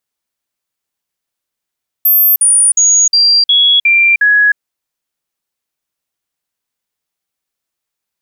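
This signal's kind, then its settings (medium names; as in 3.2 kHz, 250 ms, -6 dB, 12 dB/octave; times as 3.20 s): stepped sine 13.4 kHz down, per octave 2, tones 7, 0.31 s, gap 0.05 s -5.5 dBFS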